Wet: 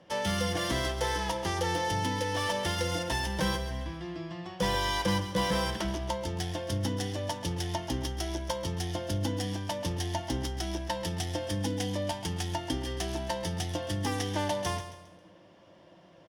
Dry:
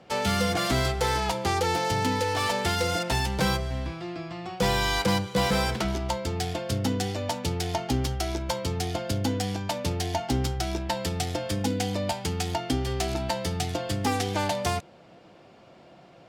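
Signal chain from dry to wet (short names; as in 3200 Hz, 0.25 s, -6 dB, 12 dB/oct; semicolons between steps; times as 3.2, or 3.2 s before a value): ripple EQ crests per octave 1.2, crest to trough 8 dB; feedback echo 0.135 s, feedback 38%, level -11 dB; gain -5.5 dB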